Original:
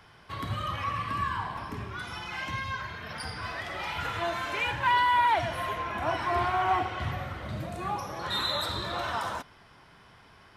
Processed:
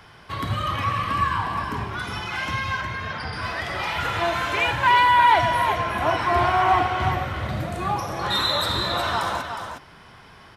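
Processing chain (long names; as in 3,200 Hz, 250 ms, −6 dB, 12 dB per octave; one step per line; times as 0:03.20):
0:02.81–0:03.33: high-frequency loss of the air 140 metres
on a send: single-tap delay 362 ms −7 dB
on the sum: level +7 dB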